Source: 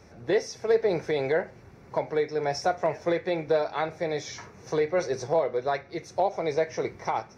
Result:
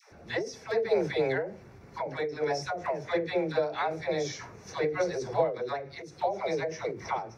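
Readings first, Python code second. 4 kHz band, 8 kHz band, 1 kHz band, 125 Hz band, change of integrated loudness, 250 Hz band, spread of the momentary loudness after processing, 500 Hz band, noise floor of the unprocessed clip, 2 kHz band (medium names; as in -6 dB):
-1.5 dB, no reading, -3.0 dB, -2.0 dB, -3.5 dB, -2.5 dB, 9 LU, -3.5 dB, -51 dBFS, -1.0 dB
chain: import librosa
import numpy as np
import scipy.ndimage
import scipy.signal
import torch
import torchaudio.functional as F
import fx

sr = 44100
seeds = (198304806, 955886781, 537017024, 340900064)

y = fx.dispersion(x, sr, late='lows', ms=116.0, hz=590.0)
y = fx.end_taper(y, sr, db_per_s=110.0)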